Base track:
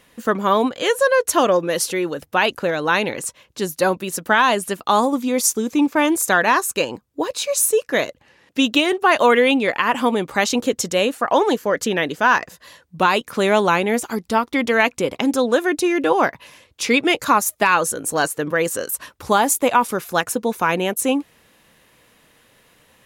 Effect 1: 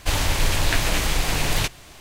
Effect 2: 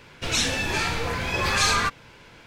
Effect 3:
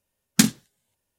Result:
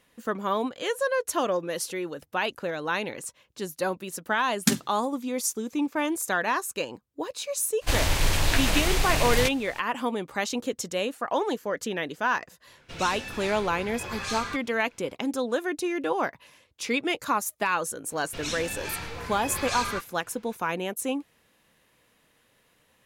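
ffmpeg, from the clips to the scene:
-filter_complex "[2:a]asplit=2[a][b];[0:a]volume=-10dB[c];[3:a]atrim=end=1.18,asetpts=PTS-STARTPTS,volume=-5.5dB,afade=t=in:d=0.004:c=hsin,afade=t=out:st=1.176:d=0.004:c=hsin,adelay=4280[d];[1:a]atrim=end=2,asetpts=PTS-STARTPTS,volume=-2.5dB,afade=t=in:d=0.02,afade=t=out:st=1.98:d=0.02,adelay=7810[e];[a]atrim=end=2.46,asetpts=PTS-STARTPTS,volume=-12dB,afade=t=in:d=0.004:c=hsin,afade=t=out:st=2.456:d=0.004:c=hsin,adelay=12670[f];[b]atrim=end=2.46,asetpts=PTS-STARTPTS,volume=-10dB,afade=t=in:d=0.004:c=hsin,afade=t=out:st=2.456:d=0.004:c=hsin,adelay=18110[g];[c][d][e][f][g]amix=inputs=5:normalize=0"

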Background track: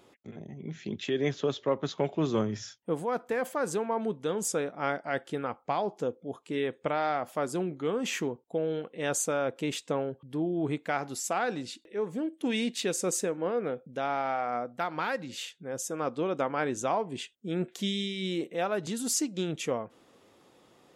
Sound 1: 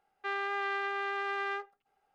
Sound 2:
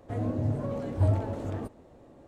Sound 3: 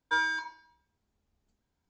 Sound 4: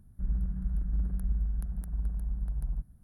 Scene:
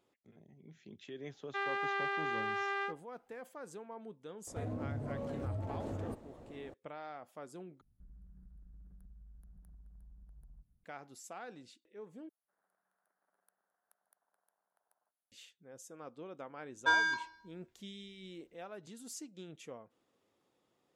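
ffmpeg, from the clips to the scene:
-filter_complex "[4:a]asplit=2[a][b];[0:a]volume=-17.5dB[c];[2:a]acompressor=threshold=-36dB:ratio=6:attack=3.2:release=140:knee=1:detection=peak[d];[a]acompressor=threshold=-35dB:ratio=6:attack=3.2:release=140:knee=1:detection=peak[e];[b]highpass=f=610:w=0.5412,highpass=f=610:w=1.3066[f];[c]asplit=3[g][h][i];[g]atrim=end=7.814[j];[e]atrim=end=3.03,asetpts=PTS-STARTPTS,volume=-17.5dB[k];[h]atrim=start=10.836:end=12.294[l];[f]atrim=end=3.03,asetpts=PTS-STARTPTS,volume=-16.5dB[m];[i]atrim=start=15.316[n];[1:a]atrim=end=2.14,asetpts=PTS-STARTPTS,volume=-2dB,afade=t=in:d=0.004:c=hsin,afade=t=out:st=2.136:d=0.004:c=hsin,adelay=1300[o];[d]atrim=end=2.27,asetpts=PTS-STARTPTS,afade=t=in:d=0.004:c=hsin,afade=t=out:st=2.266:d=0.004:c=hsin,adelay=4470[p];[3:a]atrim=end=1.89,asetpts=PTS-STARTPTS,volume=-0.5dB,afade=t=in:d=0.004:c=hsin,afade=t=out:st=1.886:d=0.004:c=hsin,adelay=16750[q];[j][k]acrossfade=d=0.004:c1=hsin:c2=hsin[r];[r][l]acrossfade=d=0.004:c1=hsin:c2=hsin[s];[s][m]acrossfade=d=0.004:c1=hsin:c2=hsin[t];[t][n]acrossfade=d=0.004:c1=hsin:c2=hsin[u];[u][o][p][q]amix=inputs=4:normalize=0"

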